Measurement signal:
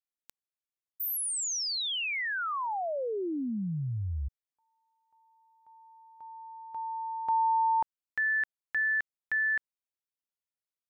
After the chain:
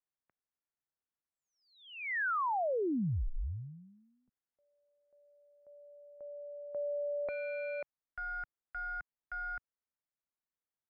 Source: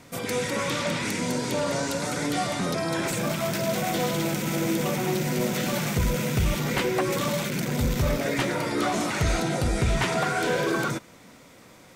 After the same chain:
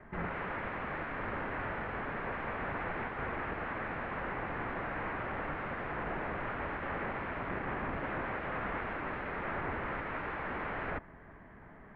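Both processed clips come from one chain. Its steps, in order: integer overflow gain 27 dB; mistuned SSB -320 Hz 260–2300 Hz

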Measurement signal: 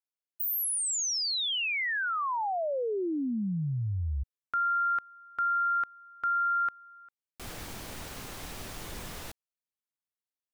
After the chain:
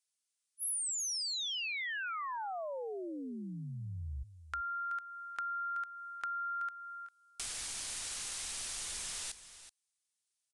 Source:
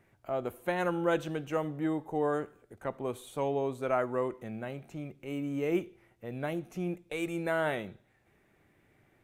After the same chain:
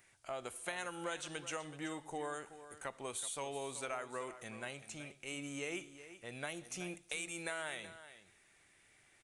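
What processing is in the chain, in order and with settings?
resampled via 22.05 kHz; pre-emphasis filter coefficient 0.97; compression 6:1, threshold -52 dBFS; bass shelf 89 Hz +11 dB; on a send: delay 377 ms -13.5 dB; on the sum: trim +14 dB

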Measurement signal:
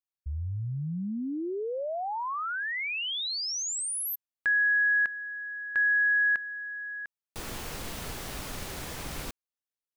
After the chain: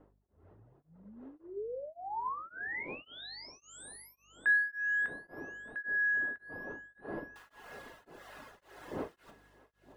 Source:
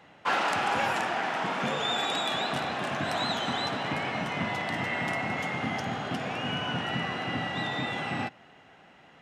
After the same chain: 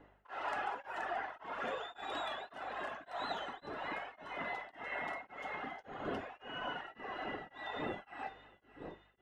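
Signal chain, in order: wind noise 250 Hz -35 dBFS; reverb removal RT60 1.9 s; treble shelf 9.5 kHz -3 dB; band-stop 2.3 kHz, Q 9; level rider gain up to 5.5 dB; three-band isolator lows -23 dB, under 320 Hz, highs -14 dB, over 2.5 kHz; hum 50 Hz, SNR 28 dB; on a send: thinning echo 623 ms, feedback 64%, high-pass 990 Hz, level -15.5 dB; on the sum: gated-style reverb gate 110 ms falling, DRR 8 dB; tremolo of two beating tones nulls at 1.8 Hz; trim -9 dB

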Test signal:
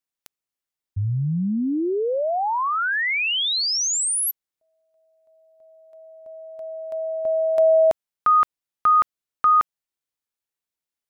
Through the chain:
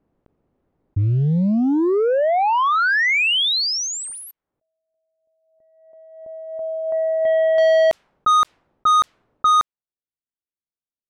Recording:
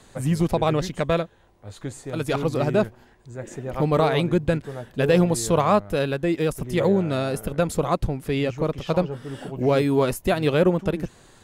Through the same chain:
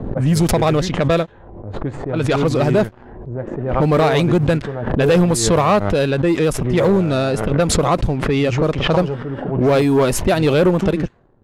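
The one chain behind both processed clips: waveshaping leveller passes 2; level-controlled noise filter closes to 420 Hz, open at -12 dBFS; swell ahead of each attack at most 51 dB/s

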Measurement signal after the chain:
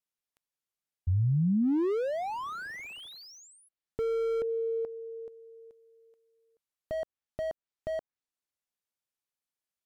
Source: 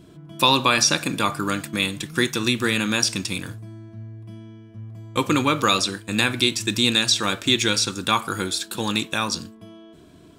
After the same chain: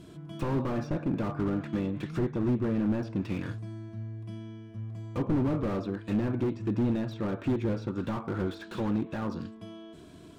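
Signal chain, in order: low-pass that closes with the level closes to 740 Hz, closed at -20 dBFS; slew-rate limiter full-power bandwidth 20 Hz; trim -1 dB

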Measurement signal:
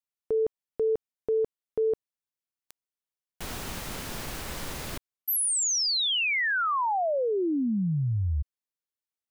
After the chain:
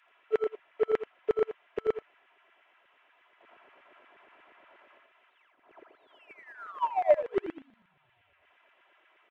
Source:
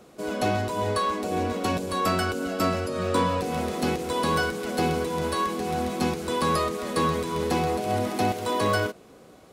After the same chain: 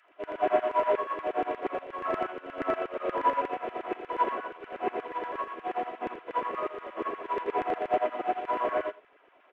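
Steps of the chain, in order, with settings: one-bit delta coder 16 kbps, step -38.5 dBFS; comb 3 ms, depth 51%; in parallel at -11.5 dB: crossover distortion -44 dBFS; on the sum: LFO high-pass saw down 8.4 Hz 390–1900 Hz; on a send: delay 83 ms -5 dB; on the sum: upward expansion 2.5:1, over -32 dBFS

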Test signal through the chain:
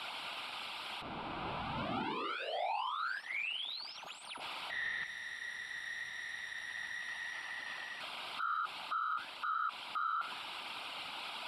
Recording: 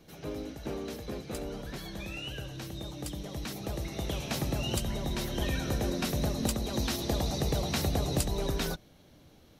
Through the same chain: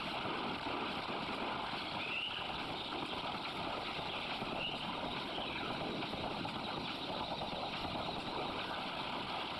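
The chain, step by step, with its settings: one-bit delta coder 64 kbps, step -32 dBFS; high-pass 400 Hz 12 dB/octave; static phaser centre 1.8 kHz, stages 6; flange 0.93 Hz, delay 1.4 ms, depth 8.8 ms, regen +87%; whisper effect; gain riding within 5 dB 2 s; peak limiter -39.5 dBFS; low-pass 2.9 kHz 12 dB/octave; band-stop 1.1 kHz, Q 12; trim +11.5 dB

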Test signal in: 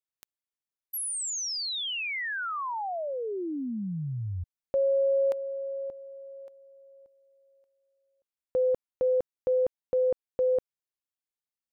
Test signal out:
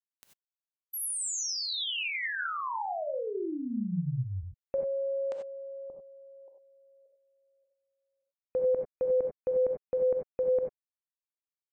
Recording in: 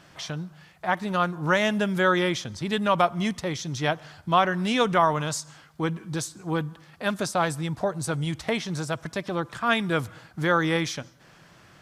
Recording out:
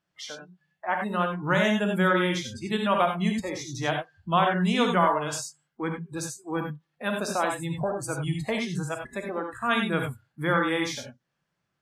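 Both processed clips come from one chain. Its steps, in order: spectral noise reduction 26 dB; gated-style reverb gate 110 ms rising, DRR 2.5 dB; trim -3 dB

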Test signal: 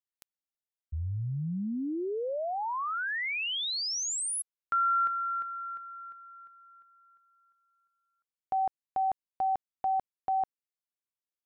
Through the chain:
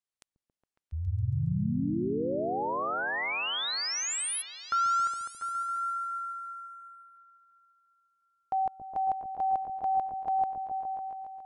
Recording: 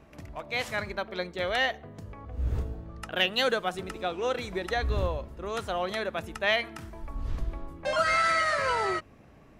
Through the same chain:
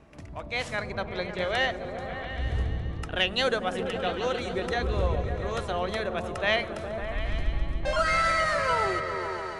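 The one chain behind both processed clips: steep low-pass 11 kHz 96 dB/octave; on a send: delay with an opening low-pass 138 ms, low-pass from 200 Hz, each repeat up 1 oct, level 0 dB

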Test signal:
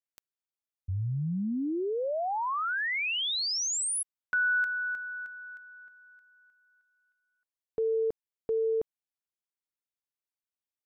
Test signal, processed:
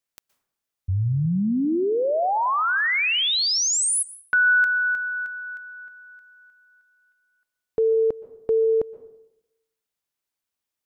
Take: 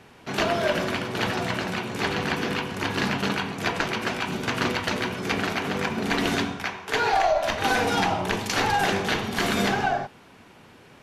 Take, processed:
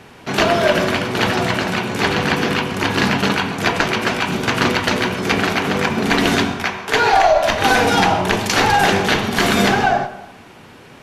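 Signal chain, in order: plate-style reverb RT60 0.86 s, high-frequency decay 0.5×, pre-delay 110 ms, DRR 15 dB; trim +8.5 dB

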